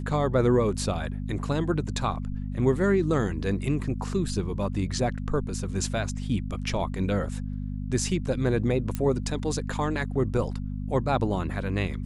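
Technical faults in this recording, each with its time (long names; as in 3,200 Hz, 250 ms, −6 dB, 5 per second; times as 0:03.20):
mains hum 50 Hz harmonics 5 −32 dBFS
0:08.95: click −15 dBFS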